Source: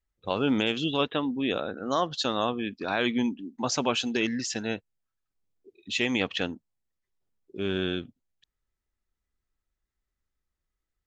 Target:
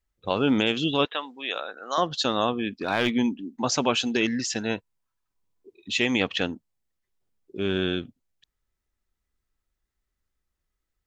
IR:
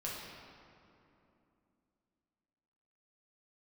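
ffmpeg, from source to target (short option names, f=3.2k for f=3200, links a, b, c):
-filter_complex "[0:a]asettb=1/sr,asplit=3[a][b][c];[a]atrim=end=1.054[d];[b]atrim=start=1.05:end=1.98,asetpts=PTS-STARTPTS,afade=t=in:d=0.004:c=qsin,afade=t=out:st=0.926:d=0.004:c=qsin,highpass=780[e];[c]atrim=start=1.976[f];[d][e]acrossfade=d=0.004:c1=hsin:c2=qsin[g];[g][f]acrossfade=d=0.004:c1=qsin:c2=hsin,asettb=1/sr,asplit=3[h][i][j];[h]atrim=end=2.714[k];[i]atrim=start=2.71:end=3.14,asetpts=PTS-STARTPTS,afade=t=in:d=0.004:c=qsin,afade=t=out:st=0.426:d=0.004:c=qsin,aeval=exprs='clip(val(0),-1,0.0473)':c=same[l];[j]atrim=start=3.136[m];[k][l]acrossfade=d=0.004:c1=hsin:c2=qsin[n];[n][m]acrossfade=d=0.004:c1=qsin:c2=hsin,asettb=1/sr,asplit=3[o][p][q];[o]atrim=end=4.704[r];[p]atrim=start=4.7:end=5.93,asetpts=PTS-STARTPTS,afade=t=in:d=0.004:c=qsin,afade=t=out:st=1.226:d=0.004:c=qsin,equalizer=f=990:t=o:w=0.22:g=11.5[s];[q]atrim=start=5.926[t];[r][s]acrossfade=d=0.004:c1=hsin:c2=qsin[u];[u][t]acrossfade=d=0.004:c1=qsin:c2=hsin,volume=3dB"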